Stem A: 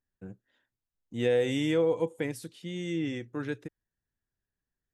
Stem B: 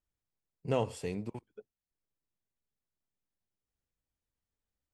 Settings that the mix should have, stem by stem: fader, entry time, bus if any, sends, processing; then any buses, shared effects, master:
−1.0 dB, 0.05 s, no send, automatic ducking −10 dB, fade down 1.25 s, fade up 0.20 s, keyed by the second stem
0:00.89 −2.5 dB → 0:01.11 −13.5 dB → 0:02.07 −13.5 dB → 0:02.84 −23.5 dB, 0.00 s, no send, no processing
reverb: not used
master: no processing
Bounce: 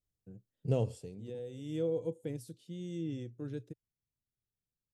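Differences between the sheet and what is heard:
stem A −1.0 dB → −8.5 dB
master: extra octave-band graphic EQ 125/500/1,000/2,000 Hz +8/+3/−10/−11 dB

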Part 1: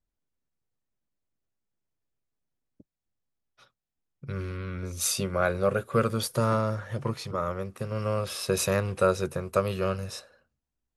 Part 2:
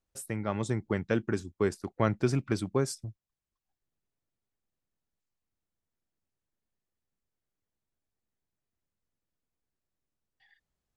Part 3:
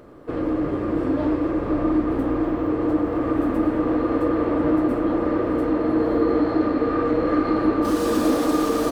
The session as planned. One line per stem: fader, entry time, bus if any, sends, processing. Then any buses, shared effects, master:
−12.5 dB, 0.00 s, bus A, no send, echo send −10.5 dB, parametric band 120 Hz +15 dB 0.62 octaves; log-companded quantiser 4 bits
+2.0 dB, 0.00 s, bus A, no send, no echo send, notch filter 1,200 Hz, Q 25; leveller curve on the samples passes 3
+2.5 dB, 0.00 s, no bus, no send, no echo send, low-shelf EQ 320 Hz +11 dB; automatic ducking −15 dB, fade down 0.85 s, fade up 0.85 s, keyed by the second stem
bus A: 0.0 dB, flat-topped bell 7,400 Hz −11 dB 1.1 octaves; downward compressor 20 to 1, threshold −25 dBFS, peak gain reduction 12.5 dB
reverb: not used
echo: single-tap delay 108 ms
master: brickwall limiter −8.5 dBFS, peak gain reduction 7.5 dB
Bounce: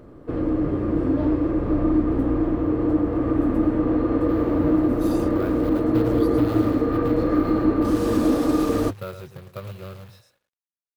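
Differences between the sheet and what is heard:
stem 2: muted
stem 3 +2.5 dB → −5.0 dB

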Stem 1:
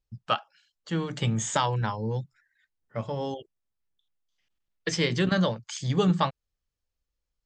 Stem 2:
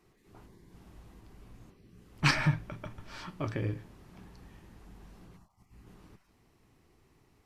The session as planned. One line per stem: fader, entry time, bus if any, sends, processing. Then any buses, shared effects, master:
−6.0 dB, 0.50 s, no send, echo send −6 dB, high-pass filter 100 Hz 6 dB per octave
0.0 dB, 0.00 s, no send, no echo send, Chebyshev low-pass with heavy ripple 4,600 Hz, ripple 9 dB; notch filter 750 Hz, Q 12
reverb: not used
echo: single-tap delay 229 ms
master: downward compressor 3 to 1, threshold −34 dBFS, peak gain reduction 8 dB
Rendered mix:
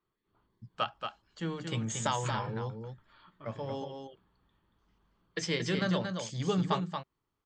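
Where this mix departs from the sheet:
stem 2 0.0 dB → −11.0 dB
master: missing downward compressor 3 to 1, threshold −34 dBFS, peak gain reduction 8 dB

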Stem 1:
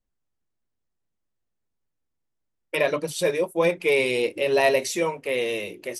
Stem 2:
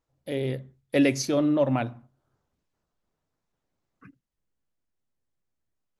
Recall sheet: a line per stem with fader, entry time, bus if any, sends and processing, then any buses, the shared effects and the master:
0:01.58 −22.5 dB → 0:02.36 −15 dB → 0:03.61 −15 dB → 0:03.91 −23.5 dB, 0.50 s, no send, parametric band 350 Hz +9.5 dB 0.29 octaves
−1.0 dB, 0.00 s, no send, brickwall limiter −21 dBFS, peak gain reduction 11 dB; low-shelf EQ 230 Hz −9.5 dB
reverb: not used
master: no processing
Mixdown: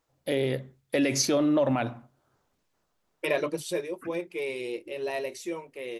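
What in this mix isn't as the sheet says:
stem 1 −22.5 dB → −12.5 dB
stem 2 −1.0 dB → +7.5 dB

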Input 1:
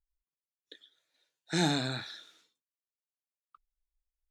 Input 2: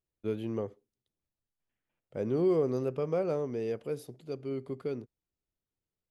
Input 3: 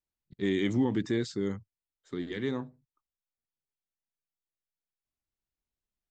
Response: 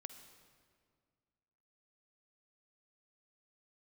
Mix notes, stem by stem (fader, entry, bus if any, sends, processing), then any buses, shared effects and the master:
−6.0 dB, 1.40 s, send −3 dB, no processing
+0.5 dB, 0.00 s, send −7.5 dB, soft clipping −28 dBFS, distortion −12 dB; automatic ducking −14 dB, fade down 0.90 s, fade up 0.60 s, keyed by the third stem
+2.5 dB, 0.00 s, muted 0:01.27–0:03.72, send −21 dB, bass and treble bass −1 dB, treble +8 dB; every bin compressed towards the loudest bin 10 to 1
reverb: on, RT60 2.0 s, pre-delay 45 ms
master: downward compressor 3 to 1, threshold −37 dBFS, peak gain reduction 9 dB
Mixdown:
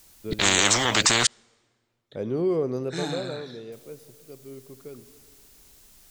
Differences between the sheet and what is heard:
stem 2: missing soft clipping −28 dBFS, distortion −12 dB
stem 3 +2.5 dB → +13.5 dB
master: missing downward compressor 3 to 1, threshold −37 dBFS, peak gain reduction 9 dB

